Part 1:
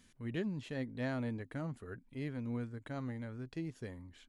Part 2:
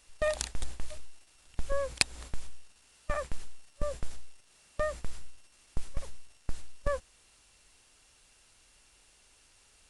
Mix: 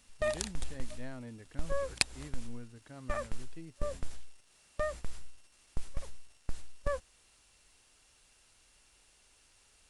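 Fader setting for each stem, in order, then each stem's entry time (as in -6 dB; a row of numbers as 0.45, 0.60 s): -8.0, -2.5 dB; 0.00, 0.00 s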